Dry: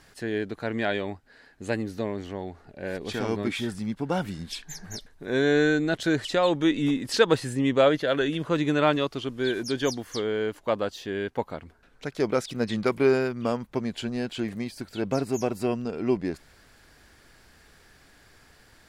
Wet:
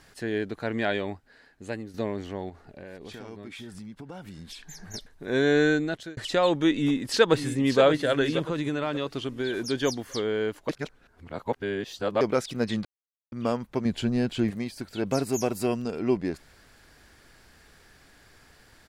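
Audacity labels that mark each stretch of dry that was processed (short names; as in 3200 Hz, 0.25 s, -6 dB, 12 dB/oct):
1.120000	1.940000	fade out, to -9.5 dB
2.490000	4.940000	compressor 5:1, threshold -39 dBFS
5.730000	6.170000	fade out
6.730000	7.810000	echo throw 0.58 s, feedback 40%, level -9 dB
8.480000	9.550000	compressor, threshold -24 dBFS
10.690000	12.210000	reverse
12.850000	13.320000	mute
13.850000	14.510000	low shelf 270 Hz +9 dB
15.060000	15.990000	high shelf 5700 Hz +9.5 dB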